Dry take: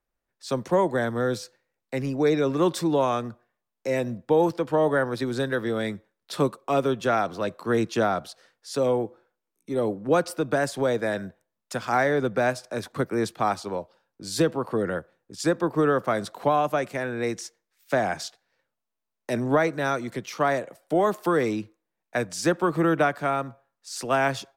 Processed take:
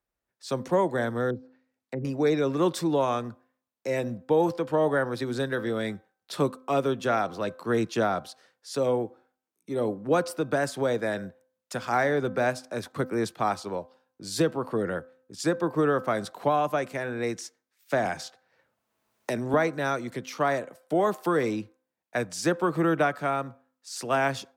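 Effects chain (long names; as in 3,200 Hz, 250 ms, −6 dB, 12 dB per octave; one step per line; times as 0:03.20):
high-pass filter 41 Hz
hum removal 258.1 Hz, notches 6
0:01.30–0:02.05: treble cut that deepens with the level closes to 460 Hz, closed at −28.5 dBFS
0:18.05–0:19.54: multiband upward and downward compressor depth 70%
level −2 dB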